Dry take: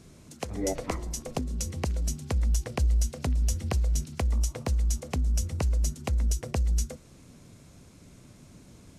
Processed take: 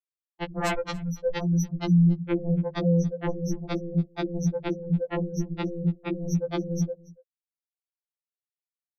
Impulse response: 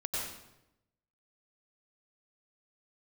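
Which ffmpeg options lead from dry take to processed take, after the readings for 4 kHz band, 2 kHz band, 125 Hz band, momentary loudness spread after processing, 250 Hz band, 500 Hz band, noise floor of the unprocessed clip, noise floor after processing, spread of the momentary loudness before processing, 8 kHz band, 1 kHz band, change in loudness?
0.0 dB, +5.5 dB, +2.5 dB, 9 LU, +12.0 dB, +8.0 dB, −53 dBFS, below −85 dBFS, 6 LU, −8.0 dB, +4.0 dB, +2.5 dB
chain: -af "bandreject=frequency=5400:width=24,afftfilt=real='re*gte(hypot(re,im),0.112)':imag='im*gte(hypot(re,im),0.112)':win_size=1024:overlap=0.75,aeval=exprs='0.141*sin(PI/2*6.31*val(0)/0.141)':channel_layout=same,aecho=1:1:283:0.075,afftfilt=real='re*2.83*eq(mod(b,8),0)':imag='im*2.83*eq(mod(b,8),0)':win_size=2048:overlap=0.75,volume=-2.5dB"

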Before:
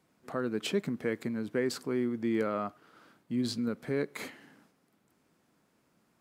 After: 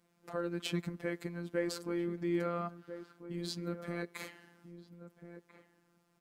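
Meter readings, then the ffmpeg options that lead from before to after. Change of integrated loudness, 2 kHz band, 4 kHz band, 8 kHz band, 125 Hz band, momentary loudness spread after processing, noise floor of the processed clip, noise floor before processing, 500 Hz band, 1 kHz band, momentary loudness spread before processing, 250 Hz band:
−5.0 dB, −4.0 dB, −3.5 dB, −3.5 dB, −0.5 dB, 20 LU, −73 dBFS, −72 dBFS, −5.0 dB, −3.0 dB, 7 LU, −5.5 dB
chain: -filter_complex "[0:a]asplit=2[link_01][link_02];[link_02]adelay=1341,volume=-11dB,highshelf=frequency=4000:gain=-30.2[link_03];[link_01][link_03]amix=inputs=2:normalize=0,afftfilt=real='hypot(re,im)*cos(PI*b)':imag='0':win_size=1024:overlap=0.75"

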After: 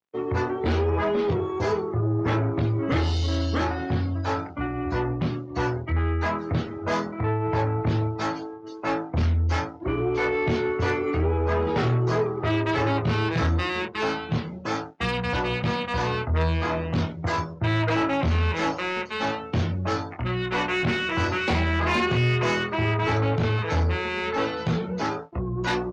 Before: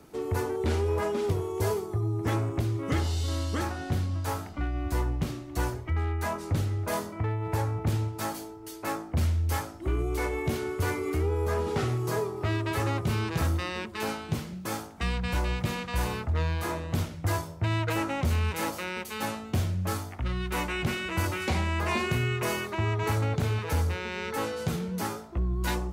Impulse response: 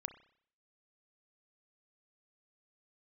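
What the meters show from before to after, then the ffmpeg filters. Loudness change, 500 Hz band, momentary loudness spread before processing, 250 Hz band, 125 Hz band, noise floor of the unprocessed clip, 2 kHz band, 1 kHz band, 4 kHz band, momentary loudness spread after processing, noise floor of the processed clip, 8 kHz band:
+4.5 dB, +5.5 dB, 5 LU, +6.0 dB, +3.5 dB, −42 dBFS, +6.5 dB, +6.0 dB, +5.0 dB, 5 LU, −37 dBFS, −6.0 dB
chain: -filter_complex "[0:a]bandreject=frequency=50:width_type=h:width=6,bandreject=frequency=100:width_type=h:width=6,bandreject=frequency=150:width_type=h:width=6,bandreject=frequency=200:width_type=h:width=6,bandreject=frequency=250:width_type=h:width=6,bandreject=frequency=300:width_type=h:width=6,bandreject=frequency=350:width_type=h:width=6,bandreject=frequency=400:width_type=h:width=6,bandreject=frequency=450:width_type=h:width=6,aresample=16000,aeval=exprs='sgn(val(0))*max(abs(val(0))-0.00398,0)':channel_layout=same,aresample=44100,highpass=100,lowpass=5300,asplit=2[link_01][link_02];[link_02]adelay=25,volume=-5.5dB[link_03];[link_01][link_03]amix=inputs=2:normalize=0,afftdn=noise_reduction=21:noise_floor=-49,asoftclip=type=tanh:threshold=-24.5dB,volume=8dB"

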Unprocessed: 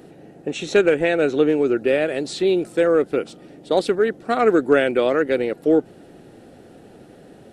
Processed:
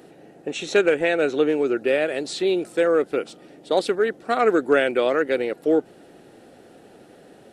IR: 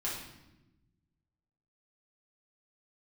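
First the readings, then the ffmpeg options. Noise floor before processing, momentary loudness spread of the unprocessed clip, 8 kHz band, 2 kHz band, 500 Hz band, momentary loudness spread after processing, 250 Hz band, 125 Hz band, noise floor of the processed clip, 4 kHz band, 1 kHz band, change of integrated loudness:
−47 dBFS, 7 LU, can't be measured, 0.0 dB, −2.0 dB, 7 LU, −4.0 dB, −7.0 dB, −50 dBFS, 0.0 dB, −0.5 dB, −2.0 dB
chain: -af "lowshelf=frequency=230:gain=-10.5"

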